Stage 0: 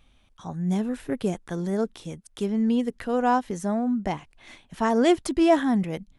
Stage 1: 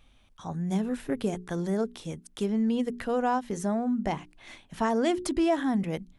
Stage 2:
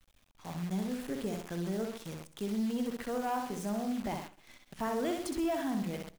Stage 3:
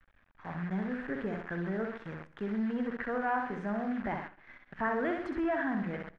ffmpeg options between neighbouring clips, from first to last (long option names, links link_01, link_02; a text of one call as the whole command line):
ffmpeg -i in.wav -af "bandreject=frequency=60:width_type=h:width=6,bandreject=frequency=120:width_type=h:width=6,bandreject=frequency=180:width_type=h:width=6,bandreject=frequency=240:width_type=h:width=6,bandreject=frequency=300:width_type=h:width=6,bandreject=frequency=360:width_type=h:width=6,bandreject=frequency=420:width_type=h:width=6,acompressor=threshold=-24dB:ratio=2.5" out.wav
ffmpeg -i in.wav -filter_complex "[0:a]asplit=2[link_01][link_02];[link_02]aecho=0:1:64|128|192|256|320:0.562|0.242|0.104|0.0447|0.0192[link_03];[link_01][link_03]amix=inputs=2:normalize=0,acrusher=bits=7:dc=4:mix=0:aa=0.000001,asoftclip=type=tanh:threshold=-17.5dB,volume=-7dB" out.wav
ffmpeg -i in.wav -af "lowpass=frequency=1700:width_type=q:width=3.8" out.wav